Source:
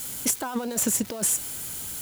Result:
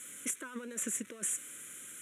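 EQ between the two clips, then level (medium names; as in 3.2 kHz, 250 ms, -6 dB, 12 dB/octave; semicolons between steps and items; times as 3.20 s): dynamic bell 720 Hz, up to -7 dB, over -51 dBFS, Q 3.1; cabinet simulation 350–9600 Hz, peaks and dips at 420 Hz -3 dB, 760 Hz -4 dB, 2.9 kHz -4 dB, 4.8 kHz -7 dB; static phaser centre 2 kHz, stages 4; -4.5 dB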